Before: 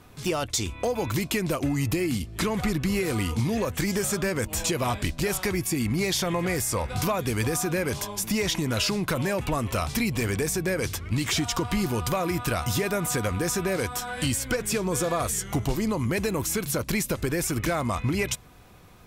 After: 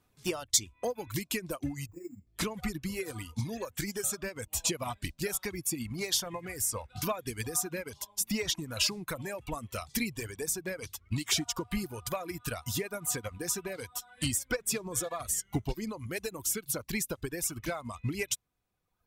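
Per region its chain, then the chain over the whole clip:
0:01.87–0:02.27: moving average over 14 samples + bad sample-rate conversion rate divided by 6×, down filtered, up hold + micro pitch shift up and down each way 51 cents
whole clip: reverb reduction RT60 1.8 s; high-shelf EQ 4,300 Hz +5.5 dB; expander for the loud parts 2.5 to 1, over −34 dBFS

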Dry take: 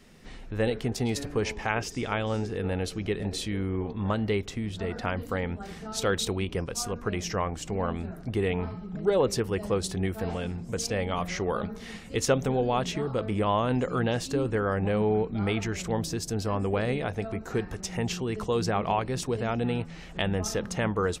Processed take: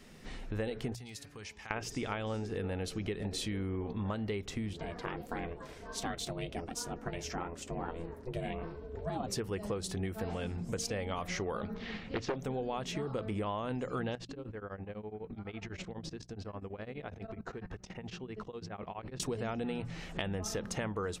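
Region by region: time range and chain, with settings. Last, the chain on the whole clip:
0:00.95–0:01.71: high-pass filter 55 Hz + guitar amp tone stack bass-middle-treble 5-5-5 + downward compressor 3 to 1, threshold −43 dBFS
0:04.73–0:09.27: flanger 1.5 Hz, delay 3.4 ms, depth 5.7 ms, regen −49% + ring modulation 250 Hz
0:11.74–0:12.36: low-pass filter 4,400 Hz 24 dB per octave + highs frequency-modulated by the lows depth 0.62 ms
0:14.15–0:19.20: low-pass filter 3,900 Hz + output level in coarse steps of 20 dB + tremolo along a rectified sine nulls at 12 Hz
whole clip: mains-hum notches 60/120/180 Hz; downward compressor, threshold −33 dBFS

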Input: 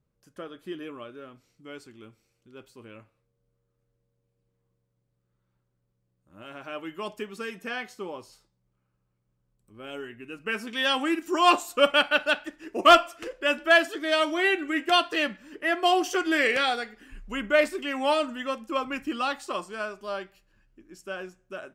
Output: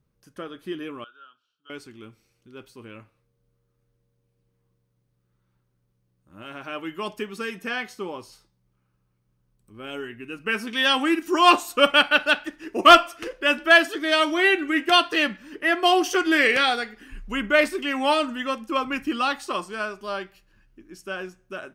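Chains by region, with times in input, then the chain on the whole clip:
0:01.04–0:01.70: pair of resonant band-passes 2,100 Hz, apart 1.1 octaves + notch filter 2,000 Hz, Q 5.3
whole clip: parametric band 600 Hz −4 dB 0.71 octaves; notch filter 7,400 Hz, Q 8.3; level +5 dB

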